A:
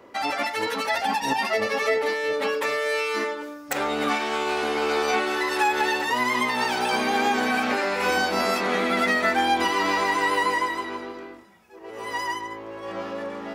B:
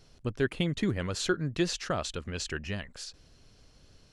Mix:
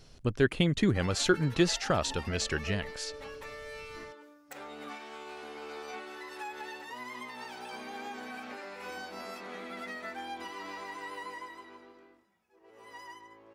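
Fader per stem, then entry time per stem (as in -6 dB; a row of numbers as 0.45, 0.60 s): -19.0, +3.0 dB; 0.80, 0.00 s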